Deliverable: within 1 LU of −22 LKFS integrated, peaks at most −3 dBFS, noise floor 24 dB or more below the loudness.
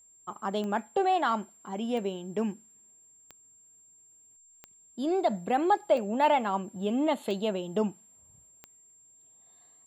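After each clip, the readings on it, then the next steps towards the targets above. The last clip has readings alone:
number of clicks 7; interfering tone 7,400 Hz; level of the tone −56 dBFS; integrated loudness −29.5 LKFS; sample peak −13.5 dBFS; target loudness −22.0 LKFS
→ click removal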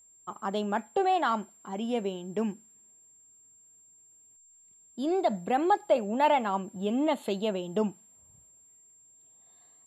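number of clicks 0; interfering tone 7,400 Hz; level of the tone −56 dBFS
→ notch filter 7,400 Hz, Q 30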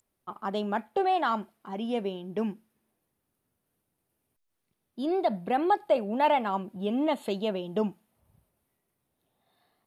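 interfering tone none found; integrated loudness −29.0 LKFS; sample peak −13.5 dBFS; target loudness −22.0 LKFS
→ level +7 dB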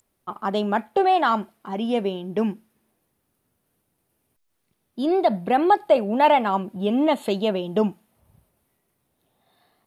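integrated loudness −22.5 LKFS; sample peak −6.5 dBFS; background noise floor −74 dBFS

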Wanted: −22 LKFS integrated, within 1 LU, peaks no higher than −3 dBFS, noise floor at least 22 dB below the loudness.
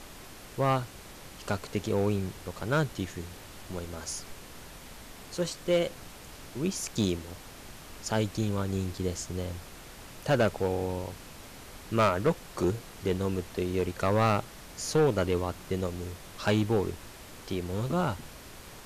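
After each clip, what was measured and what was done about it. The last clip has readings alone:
share of clipped samples 0.6%; peaks flattened at −18.5 dBFS; background noise floor −48 dBFS; target noise floor −53 dBFS; integrated loudness −30.5 LKFS; sample peak −18.5 dBFS; target loudness −22.0 LKFS
→ clipped peaks rebuilt −18.5 dBFS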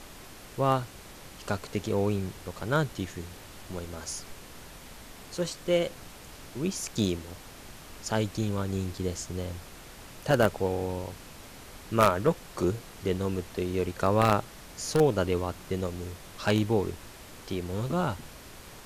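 share of clipped samples 0.0%; background noise floor −48 dBFS; target noise floor −52 dBFS
→ noise reduction from a noise print 6 dB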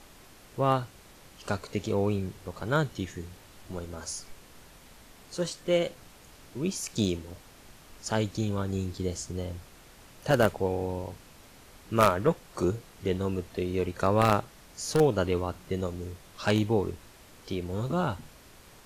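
background noise floor −54 dBFS; integrated loudness −29.5 LKFS; sample peak −9.5 dBFS; target loudness −22.0 LKFS
→ level +7.5 dB
brickwall limiter −3 dBFS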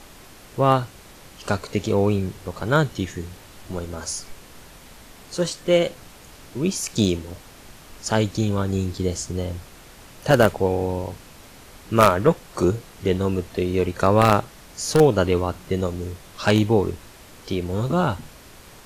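integrated loudness −22.5 LKFS; sample peak −3.0 dBFS; background noise floor −46 dBFS

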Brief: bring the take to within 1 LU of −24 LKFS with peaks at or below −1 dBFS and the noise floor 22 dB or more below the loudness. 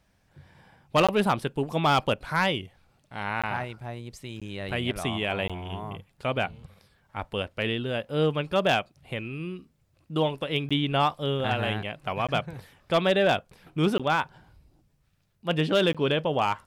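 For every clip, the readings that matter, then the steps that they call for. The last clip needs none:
share of clipped samples 0.4%; peaks flattened at −15.0 dBFS; number of dropouts 8; longest dropout 16 ms; integrated loudness −27.0 LKFS; sample peak −15.0 dBFS; target loudness −24.0 LKFS
→ clipped peaks rebuilt −15 dBFS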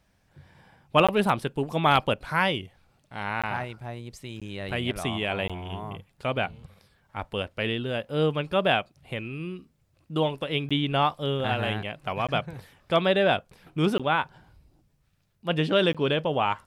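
share of clipped samples 0.0%; number of dropouts 8; longest dropout 16 ms
→ repair the gap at 0:01.07/0:03.42/0:04.40/0:05.48/0:10.69/0:12.27/0:13.98/0:15.93, 16 ms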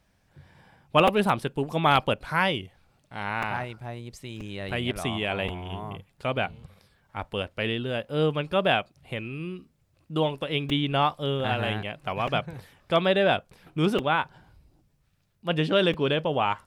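number of dropouts 0; integrated loudness −26.5 LKFS; sample peak −6.0 dBFS; target loudness −24.0 LKFS
→ level +2.5 dB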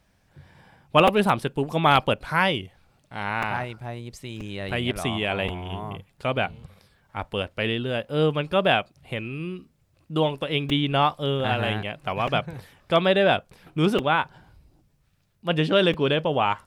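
integrated loudness −24.0 LKFS; sample peak −3.5 dBFS; background noise floor −65 dBFS

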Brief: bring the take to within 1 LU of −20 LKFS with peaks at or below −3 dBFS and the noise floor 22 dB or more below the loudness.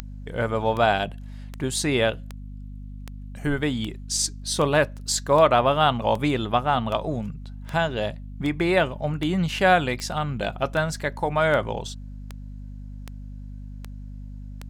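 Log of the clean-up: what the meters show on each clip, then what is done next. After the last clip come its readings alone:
number of clicks 20; mains hum 50 Hz; hum harmonics up to 250 Hz; level of the hum −35 dBFS; integrated loudness −23.5 LKFS; sample peak −4.5 dBFS; target loudness −20.0 LKFS
→ click removal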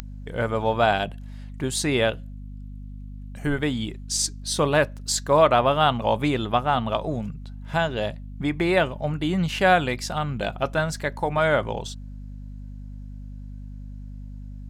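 number of clicks 0; mains hum 50 Hz; hum harmonics up to 250 Hz; level of the hum −35 dBFS
→ hum removal 50 Hz, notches 5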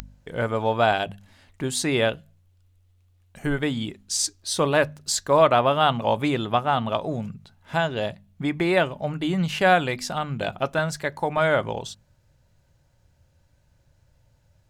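mains hum none found; integrated loudness −24.0 LKFS; sample peak −4.5 dBFS; target loudness −20.0 LKFS
→ level +4 dB
brickwall limiter −3 dBFS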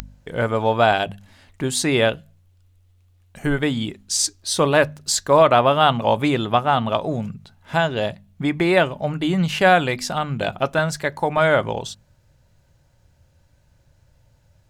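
integrated loudness −20.0 LKFS; sample peak −3.0 dBFS; background noise floor −59 dBFS

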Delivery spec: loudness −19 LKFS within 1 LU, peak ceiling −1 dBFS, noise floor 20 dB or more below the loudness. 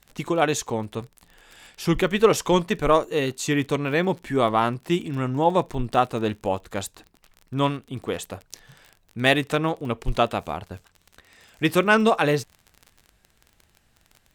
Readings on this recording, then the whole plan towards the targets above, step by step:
crackle rate 33 per second; integrated loudness −23.5 LKFS; sample peak −3.0 dBFS; target loudness −19.0 LKFS
→ click removal
level +4.5 dB
brickwall limiter −1 dBFS

